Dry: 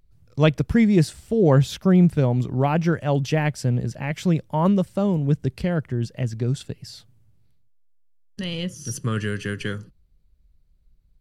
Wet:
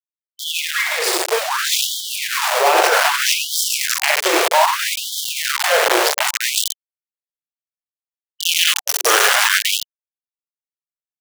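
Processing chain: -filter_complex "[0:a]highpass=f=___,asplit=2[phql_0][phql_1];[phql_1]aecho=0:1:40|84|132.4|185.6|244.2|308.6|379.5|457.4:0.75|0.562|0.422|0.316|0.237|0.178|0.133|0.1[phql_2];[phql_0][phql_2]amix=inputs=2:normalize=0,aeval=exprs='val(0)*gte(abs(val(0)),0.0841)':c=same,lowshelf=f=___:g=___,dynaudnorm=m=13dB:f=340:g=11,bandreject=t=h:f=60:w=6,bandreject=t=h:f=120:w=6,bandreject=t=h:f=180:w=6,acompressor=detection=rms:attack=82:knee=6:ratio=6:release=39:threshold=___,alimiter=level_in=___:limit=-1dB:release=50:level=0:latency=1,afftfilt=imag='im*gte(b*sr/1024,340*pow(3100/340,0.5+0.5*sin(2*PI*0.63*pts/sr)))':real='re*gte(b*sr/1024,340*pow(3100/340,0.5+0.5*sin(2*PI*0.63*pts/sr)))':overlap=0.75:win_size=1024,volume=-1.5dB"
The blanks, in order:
120, 380, -11.5, -22dB, 12dB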